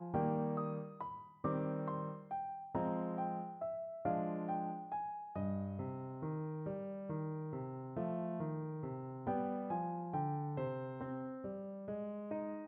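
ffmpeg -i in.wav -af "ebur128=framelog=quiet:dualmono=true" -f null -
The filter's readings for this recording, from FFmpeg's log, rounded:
Integrated loudness:
  I:         -38.4 LUFS
  Threshold: -48.4 LUFS
Loudness range:
  LRA:         2.1 LU
  Threshold: -58.5 LUFS
  LRA low:   -39.7 LUFS
  LRA high:  -37.6 LUFS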